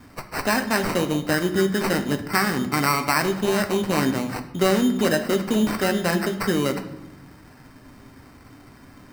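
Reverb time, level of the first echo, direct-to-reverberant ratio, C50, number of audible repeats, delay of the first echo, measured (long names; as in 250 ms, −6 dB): 0.90 s, no echo audible, 5.5 dB, 11.0 dB, no echo audible, no echo audible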